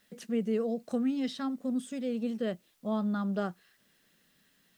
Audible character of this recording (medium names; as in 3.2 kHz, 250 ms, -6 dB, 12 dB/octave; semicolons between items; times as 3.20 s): a quantiser's noise floor 12-bit, dither triangular